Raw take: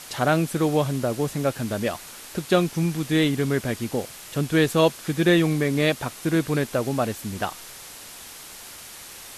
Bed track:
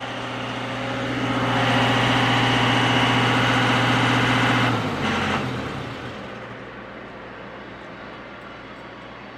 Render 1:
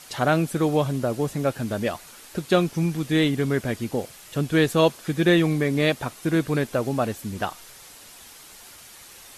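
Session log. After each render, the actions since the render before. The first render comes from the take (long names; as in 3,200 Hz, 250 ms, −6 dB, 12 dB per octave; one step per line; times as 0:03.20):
broadband denoise 6 dB, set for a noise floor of −42 dBFS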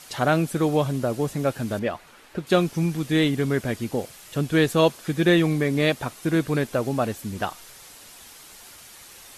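0:01.79–0:02.47: bass and treble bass −2 dB, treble −13 dB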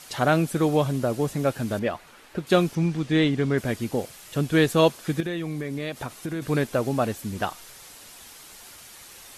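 0:02.75–0:03.58: high-frequency loss of the air 73 metres
0:05.20–0:06.42: downward compressor, threshold −27 dBFS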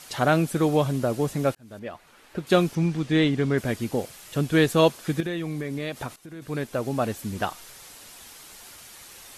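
0:01.55–0:02.51: fade in
0:06.16–0:07.20: fade in, from −15 dB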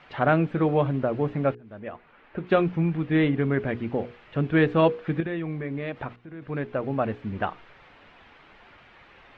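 low-pass filter 2,600 Hz 24 dB per octave
mains-hum notches 60/120/180/240/300/360/420/480 Hz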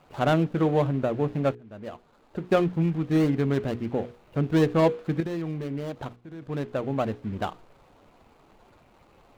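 running median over 25 samples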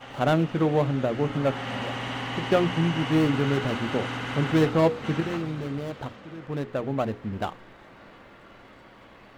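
mix in bed track −13 dB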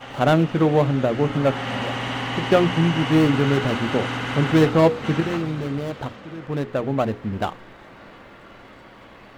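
level +5 dB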